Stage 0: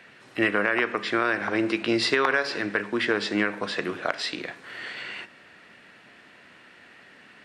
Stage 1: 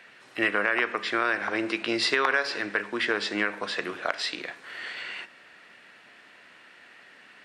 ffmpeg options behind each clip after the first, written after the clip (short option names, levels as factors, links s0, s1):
-af "lowshelf=f=320:g=-10.5"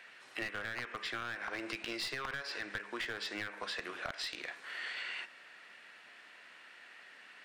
-af "lowshelf=f=430:g=-10,aeval=exprs='clip(val(0),-1,0.0531)':c=same,acompressor=threshold=0.02:ratio=6,volume=0.75"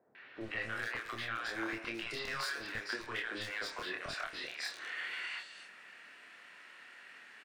-filter_complex "[0:a]asplit=2[s0][s1];[s1]adelay=27,volume=0.708[s2];[s0][s2]amix=inputs=2:normalize=0,acrossover=split=680|3900[s3][s4][s5];[s4]adelay=150[s6];[s5]adelay=410[s7];[s3][s6][s7]amix=inputs=3:normalize=0"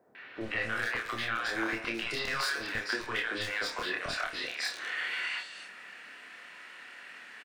-filter_complex "[0:a]asplit=2[s0][s1];[s1]adelay=31,volume=0.282[s2];[s0][s2]amix=inputs=2:normalize=0,volume=2"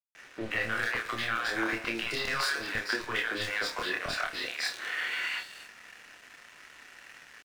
-af "aeval=exprs='sgn(val(0))*max(abs(val(0))-0.00266,0)':c=same,volume=1.33"